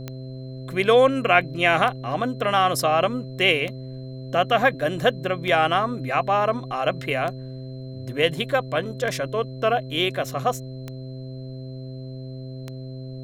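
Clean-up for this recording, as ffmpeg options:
ffmpeg -i in.wav -af "adeclick=threshold=4,bandreject=frequency=130.1:width_type=h:width=4,bandreject=frequency=260.2:width_type=h:width=4,bandreject=frequency=390.3:width_type=h:width=4,bandreject=frequency=520.4:width_type=h:width=4,bandreject=frequency=650.5:width_type=h:width=4,bandreject=frequency=4100:width=30,agate=range=-21dB:threshold=-27dB" out.wav

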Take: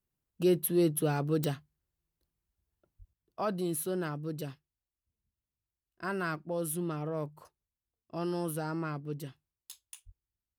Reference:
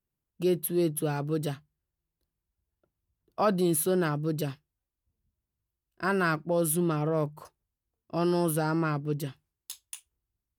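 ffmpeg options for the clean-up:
ffmpeg -i in.wav -filter_complex "[0:a]adeclick=threshold=4,asplit=3[link_01][link_02][link_03];[link_01]afade=type=out:start_time=2.98:duration=0.02[link_04];[link_02]highpass=frequency=140:width=0.5412,highpass=frequency=140:width=1.3066,afade=type=in:start_time=2.98:duration=0.02,afade=type=out:start_time=3.1:duration=0.02[link_05];[link_03]afade=type=in:start_time=3.1:duration=0.02[link_06];[link_04][link_05][link_06]amix=inputs=3:normalize=0,asplit=3[link_07][link_08][link_09];[link_07]afade=type=out:start_time=10.05:duration=0.02[link_10];[link_08]highpass=frequency=140:width=0.5412,highpass=frequency=140:width=1.3066,afade=type=in:start_time=10.05:duration=0.02,afade=type=out:start_time=10.17:duration=0.02[link_11];[link_09]afade=type=in:start_time=10.17:duration=0.02[link_12];[link_10][link_11][link_12]amix=inputs=3:normalize=0,asetnsamples=nb_out_samples=441:pad=0,asendcmd='3.13 volume volume 7.5dB',volume=0dB" out.wav

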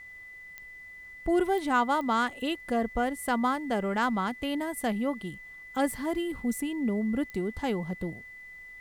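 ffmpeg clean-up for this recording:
ffmpeg -i in.wav -af "adeclick=threshold=4,bandreject=frequency=2000:width=30,agate=range=-21dB:threshold=-39dB" out.wav

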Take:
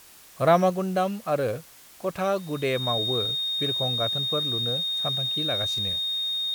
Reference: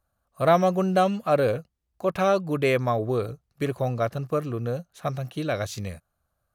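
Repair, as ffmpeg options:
ffmpeg -i in.wav -af "bandreject=frequency=3700:width=30,afwtdn=0.0032,asetnsamples=nb_out_samples=441:pad=0,asendcmd='0.7 volume volume 4dB',volume=0dB" out.wav

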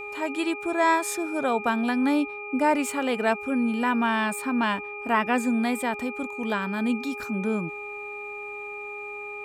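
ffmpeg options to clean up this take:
ffmpeg -i in.wav -af "bandreject=frequency=413:width_type=h:width=4,bandreject=frequency=826:width_type=h:width=4,bandreject=frequency=1239:width_type=h:width=4,bandreject=frequency=2400:width=30" out.wav

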